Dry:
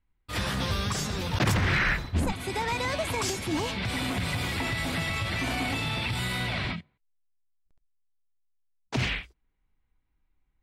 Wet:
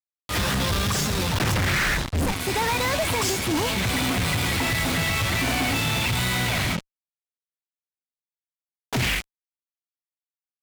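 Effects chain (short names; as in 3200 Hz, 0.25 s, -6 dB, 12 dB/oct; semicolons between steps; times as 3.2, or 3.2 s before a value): power-law curve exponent 2; fuzz box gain 51 dB, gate -54 dBFS; gain -7.5 dB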